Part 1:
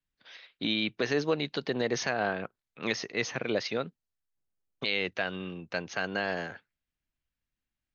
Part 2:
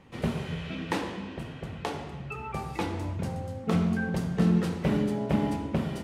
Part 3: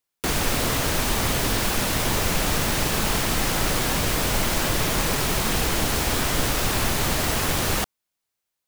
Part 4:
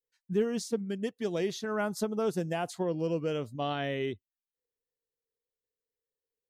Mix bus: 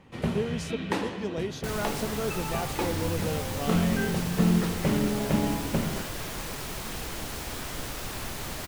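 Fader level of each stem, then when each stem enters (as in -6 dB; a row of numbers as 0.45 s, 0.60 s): -18.5 dB, +0.5 dB, -12.5 dB, -2.0 dB; 0.00 s, 0.00 s, 1.40 s, 0.00 s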